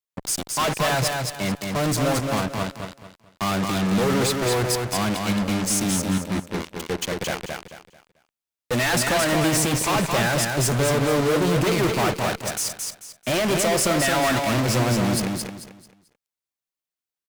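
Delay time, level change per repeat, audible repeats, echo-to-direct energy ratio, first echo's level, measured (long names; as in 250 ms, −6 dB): 220 ms, −10.5 dB, 3, −3.5 dB, −4.0 dB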